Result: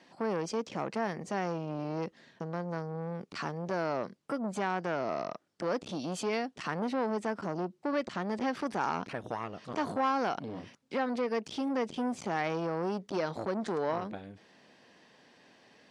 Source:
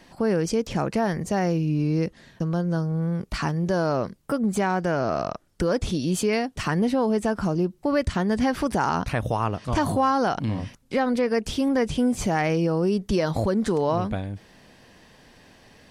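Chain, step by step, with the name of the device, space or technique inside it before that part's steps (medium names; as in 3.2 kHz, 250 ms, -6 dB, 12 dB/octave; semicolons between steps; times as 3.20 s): public-address speaker with an overloaded transformer (transformer saturation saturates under 760 Hz; band-pass 210–6400 Hz); trim -6.5 dB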